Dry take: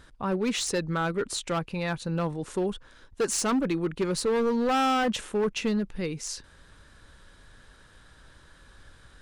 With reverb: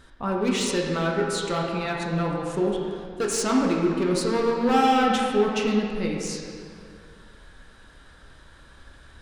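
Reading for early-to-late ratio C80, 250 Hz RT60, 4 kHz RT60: 2.5 dB, 2.3 s, 1.6 s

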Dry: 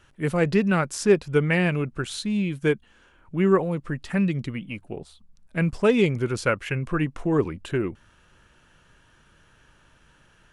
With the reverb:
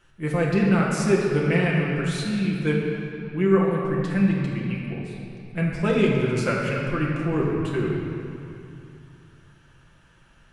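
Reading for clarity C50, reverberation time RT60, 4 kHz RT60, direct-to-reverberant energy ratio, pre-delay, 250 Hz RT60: 0.0 dB, 2.7 s, 2.0 s, -4.0 dB, 6 ms, 3.1 s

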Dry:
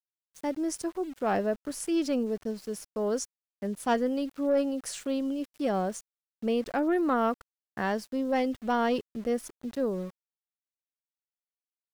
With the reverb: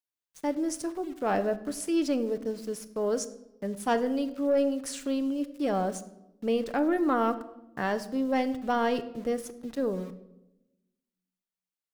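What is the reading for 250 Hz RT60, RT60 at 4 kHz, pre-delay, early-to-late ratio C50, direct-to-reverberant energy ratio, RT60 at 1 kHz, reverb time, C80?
1.3 s, 0.65 s, 7 ms, 14.5 dB, 9.5 dB, 0.80 s, 0.95 s, 16.5 dB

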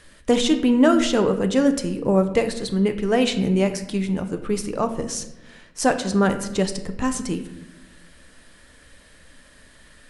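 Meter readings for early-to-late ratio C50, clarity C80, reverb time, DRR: 11.0 dB, 13.0 dB, 0.95 s, 7.0 dB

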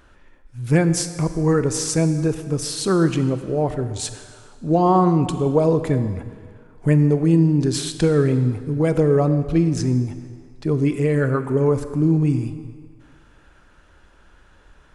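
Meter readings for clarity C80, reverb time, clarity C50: 11.5 dB, 1.9 s, 11.0 dB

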